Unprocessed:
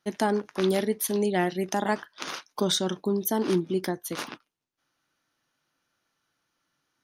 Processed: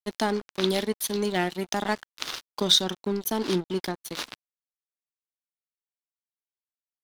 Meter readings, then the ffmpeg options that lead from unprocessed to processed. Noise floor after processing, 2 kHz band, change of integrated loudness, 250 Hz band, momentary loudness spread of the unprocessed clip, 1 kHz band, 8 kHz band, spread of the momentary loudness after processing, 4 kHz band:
below −85 dBFS, +0.5 dB, +0.5 dB, −2.0 dB, 10 LU, −1.0 dB, +1.0 dB, 14 LU, +7.5 dB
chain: -af "equalizer=frequency=3900:width=1.3:gain=9.5,aeval=exprs='sgn(val(0))*max(abs(val(0))-0.0158,0)':channel_layout=same"

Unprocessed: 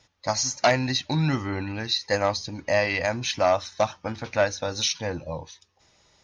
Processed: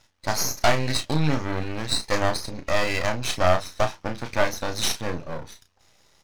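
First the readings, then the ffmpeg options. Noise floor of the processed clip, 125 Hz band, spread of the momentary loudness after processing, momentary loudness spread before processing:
−62 dBFS, +1.0 dB, 9 LU, 9 LU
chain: -filter_complex "[0:a]aeval=exprs='max(val(0),0)':channel_layout=same,asplit=2[link_01][link_02];[link_02]adelay=33,volume=-8dB[link_03];[link_01][link_03]amix=inputs=2:normalize=0,volume=4dB"

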